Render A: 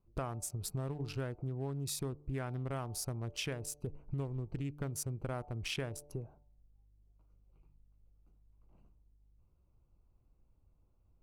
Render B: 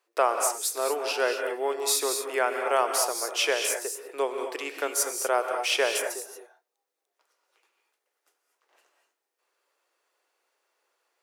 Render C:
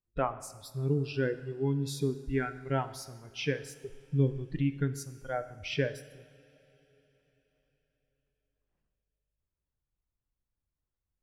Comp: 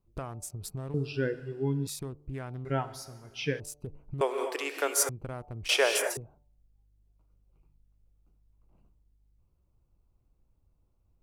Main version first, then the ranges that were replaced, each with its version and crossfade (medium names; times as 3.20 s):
A
0.94–1.87 s: from C
2.65–3.60 s: from C
4.21–5.09 s: from B
5.69–6.17 s: from B